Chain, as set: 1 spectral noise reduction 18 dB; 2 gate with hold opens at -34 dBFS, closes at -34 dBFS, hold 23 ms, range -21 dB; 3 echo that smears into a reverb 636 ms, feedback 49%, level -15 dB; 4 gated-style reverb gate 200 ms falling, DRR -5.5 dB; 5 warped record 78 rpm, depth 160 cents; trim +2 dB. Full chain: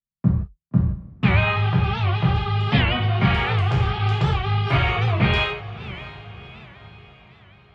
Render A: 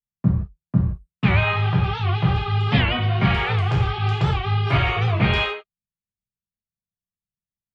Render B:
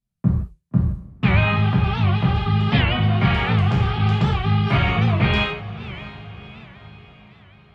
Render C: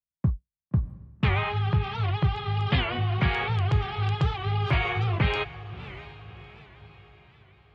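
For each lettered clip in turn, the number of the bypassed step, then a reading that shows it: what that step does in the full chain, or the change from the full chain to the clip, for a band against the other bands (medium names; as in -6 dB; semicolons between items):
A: 3, momentary loudness spread change -10 LU; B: 1, 250 Hz band +3.0 dB; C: 4, crest factor change -2.5 dB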